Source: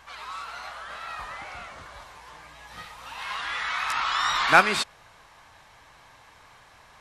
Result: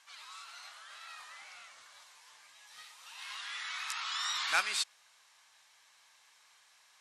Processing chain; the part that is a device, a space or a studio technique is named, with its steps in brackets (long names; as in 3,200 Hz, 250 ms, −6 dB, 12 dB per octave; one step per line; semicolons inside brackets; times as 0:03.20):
piezo pickup straight into a mixer (low-pass filter 8,700 Hz 12 dB per octave; first difference)